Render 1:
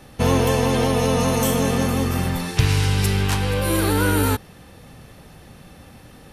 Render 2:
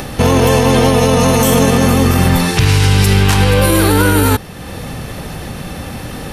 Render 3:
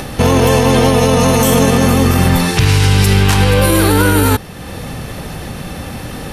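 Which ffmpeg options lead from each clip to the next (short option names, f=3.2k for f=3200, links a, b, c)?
-filter_complex "[0:a]asplit=2[a][b];[b]acompressor=mode=upward:threshold=-24dB:ratio=2.5,volume=-1dB[c];[a][c]amix=inputs=2:normalize=0,alimiter=level_in=8.5dB:limit=-1dB:release=50:level=0:latency=1,volume=-1dB"
-af "aresample=32000,aresample=44100"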